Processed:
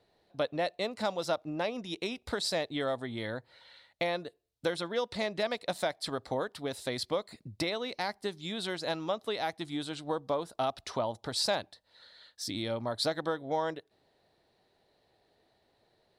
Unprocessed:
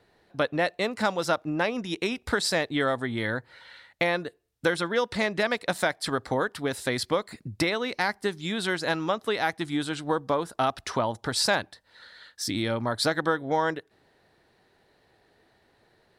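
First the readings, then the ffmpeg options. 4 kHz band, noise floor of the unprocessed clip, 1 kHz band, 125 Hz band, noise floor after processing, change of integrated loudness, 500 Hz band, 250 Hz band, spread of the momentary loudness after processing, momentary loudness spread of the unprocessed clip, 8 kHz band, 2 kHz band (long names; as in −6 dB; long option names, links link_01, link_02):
−4.5 dB, −65 dBFS, −7.0 dB, −8.0 dB, −72 dBFS, −6.5 dB, −5.0 dB, −7.5 dB, 6 LU, 5 LU, −7.5 dB, −11.0 dB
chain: -af "equalizer=frequency=630:width_type=o:width=0.67:gain=5,equalizer=frequency=1600:width_type=o:width=0.67:gain=-5,equalizer=frequency=4000:width_type=o:width=0.67:gain=5,volume=-8dB"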